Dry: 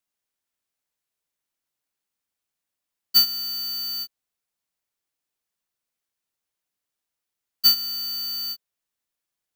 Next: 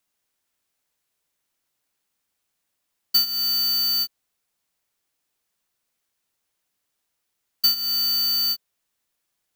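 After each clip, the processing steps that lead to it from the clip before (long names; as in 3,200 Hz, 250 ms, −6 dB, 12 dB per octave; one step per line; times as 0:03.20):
downward compressor 6 to 1, threshold −26 dBFS, peak gain reduction 11.5 dB
level +7.5 dB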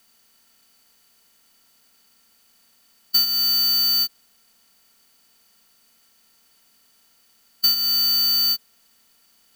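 compressor on every frequency bin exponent 0.6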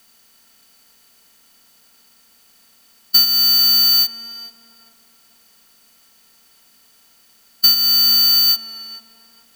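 tape delay 435 ms, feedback 43%, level −8 dB, low-pass 1,300 Hz
level +6 dB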